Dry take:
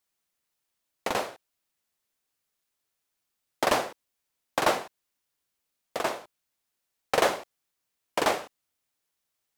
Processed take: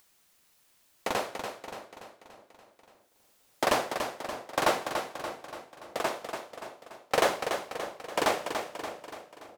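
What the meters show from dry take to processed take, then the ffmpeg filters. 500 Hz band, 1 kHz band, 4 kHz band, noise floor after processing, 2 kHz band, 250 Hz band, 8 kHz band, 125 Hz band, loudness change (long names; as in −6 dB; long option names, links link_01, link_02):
−0.5 dB, −0.5 dB, −0.5 dB, −66 dBFS, −0.5 dB, −0.5 dB, −0.5 dB, −0.5 dB, −3.0 dB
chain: -filter_complex "[0:a]asplit=2[link_01][link_02];[link_02]aecho=0:1:288|576|864|1152|1440|1728:0.447|0.232|0.121|0.0628|0.0327|0.017[link_03];[link_01][link_03]amix=inputs=2:normalize=0,acompressor=mode=upward:threshold=-49dB:ratio=2.5,asplit=2[link_04][link_05];[link_05]adelay=614,lowpass=frequency=820:poles=1,volume=-14.5dB,asplit=2[link_06][link_07];[link_07]adelay=614,lowpass=frequency=820:poles=1,volume=0.32,asplit=2[link_08][link_09];[link_09]adelay=614,lowpass=frequency=820:poles=1,volume=0.32[link_10];[link_06][link_08][link_10]amix=inputs=3:normalize=0[link_11];[link_04][link_11]amix=inputs=2:normalize=0,volume=-1.5dB"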